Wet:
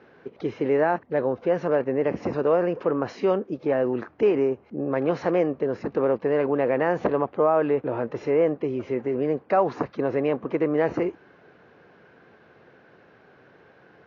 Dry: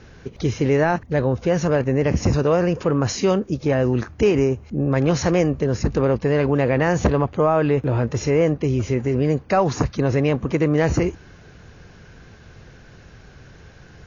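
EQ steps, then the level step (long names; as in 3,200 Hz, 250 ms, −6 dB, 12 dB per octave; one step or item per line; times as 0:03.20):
band-pass filter 340–5,000 Hz
high-frequency loss of the air 150 metres
high-shelf EQ 2,300 Hz −11.5 dB
0.0 dB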